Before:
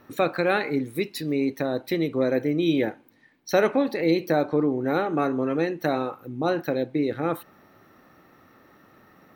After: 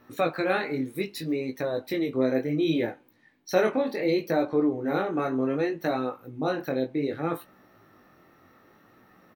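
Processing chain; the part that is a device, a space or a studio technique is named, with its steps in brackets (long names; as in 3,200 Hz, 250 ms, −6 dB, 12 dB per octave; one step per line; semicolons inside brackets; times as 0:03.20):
double-tracked vocal (double-tracking delay 20 ms −13.5 dB; chorus effect 0.66 Hz, delay 16 ms, depth 7.2 ms)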